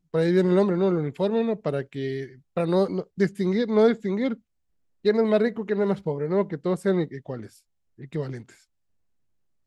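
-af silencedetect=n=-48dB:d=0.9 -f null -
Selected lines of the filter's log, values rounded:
silence_start: 8.58
silence_end: 9.66 | silence_duration: 1.09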